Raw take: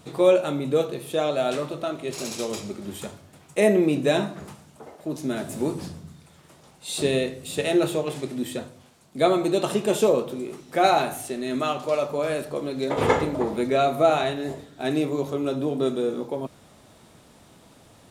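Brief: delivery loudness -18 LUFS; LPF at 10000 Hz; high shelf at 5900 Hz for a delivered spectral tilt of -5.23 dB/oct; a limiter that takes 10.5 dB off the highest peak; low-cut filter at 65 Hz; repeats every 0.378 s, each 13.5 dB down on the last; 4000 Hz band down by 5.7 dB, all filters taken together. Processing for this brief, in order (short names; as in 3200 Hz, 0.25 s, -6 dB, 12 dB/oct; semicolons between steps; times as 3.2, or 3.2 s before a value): HPF 65 Hz; LPF 10000 Hz; bell 4000 Hz -9 dB; high shelf 5900 Hz +7.5 dB; limiter -16.5 dBFS; feedback echo 0.378 s, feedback 21%, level -13.5 dB; gain +10 dB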